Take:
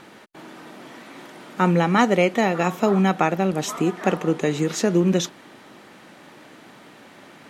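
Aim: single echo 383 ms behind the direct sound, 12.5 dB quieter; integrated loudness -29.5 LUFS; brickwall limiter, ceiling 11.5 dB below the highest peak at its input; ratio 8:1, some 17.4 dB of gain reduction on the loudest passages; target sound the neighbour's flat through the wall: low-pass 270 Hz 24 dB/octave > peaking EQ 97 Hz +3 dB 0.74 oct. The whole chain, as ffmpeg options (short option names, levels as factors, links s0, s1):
-af "acompressor=threshold=0.0251:ratio=8,alimiter=level_in=1.41:limit=0.0631:level=0:latency=1,volume=0.708,lowpass=f=270:w=0.5412,lowpass=f=270:w=1.3066,equalizer=f=97:t=o:w=0.74:g=3,aecho=1:1:383:0.237,volume=5.01"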